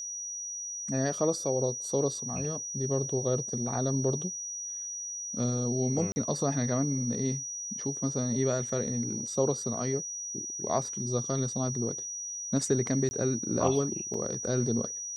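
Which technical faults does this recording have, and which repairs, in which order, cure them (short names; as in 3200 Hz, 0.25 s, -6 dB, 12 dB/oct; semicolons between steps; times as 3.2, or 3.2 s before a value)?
tone 5800 Hz -35 dBFS
6.12–6.16 gap 40 ms
13.09–13.11 gap 20 ms
14.14 gap 2.9 ms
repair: notch 5800 Hz, Q 30; interpolate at 6.12, 40 ms; interpolate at 13.09, 20 ms; interpolate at 14.14, 2.9 ms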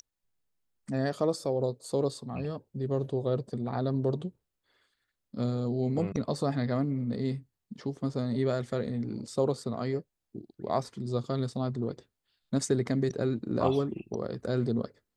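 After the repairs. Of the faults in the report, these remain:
none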